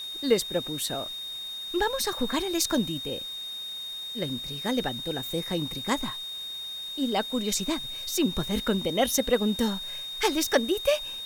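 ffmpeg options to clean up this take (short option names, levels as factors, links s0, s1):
-af "bandreject=f=3700:w=30,afwtdn=0.0032"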